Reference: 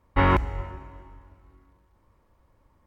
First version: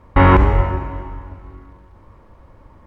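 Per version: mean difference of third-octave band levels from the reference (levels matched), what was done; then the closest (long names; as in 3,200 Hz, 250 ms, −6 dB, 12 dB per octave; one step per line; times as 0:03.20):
4.5 dB: low-pass filter 2,200 Hz 6 dB per octave
flanger 1.8 Hz, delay 9.1 ms, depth 2.4 ms, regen +89%
boost into a limiter +23 dB
level −1 dB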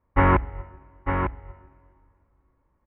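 8.5 dB: low-pass filter 2,300 Hz 24 dB per octave
single-tap delay 901 ms −4.5 dB
expander for the loud parts 1.5 to 1, over −38 dBFS
level +2.5 dB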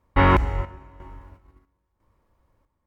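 2.0 dB: noise gate −52 dBFS, range −9 dB
in parallel at 0 dB: brickwall limiter −17.5 dBFS, peak gain reduction 9 dB
on the sum: square-wave tremolo 1 Hz, depth 65%, duty 65%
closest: third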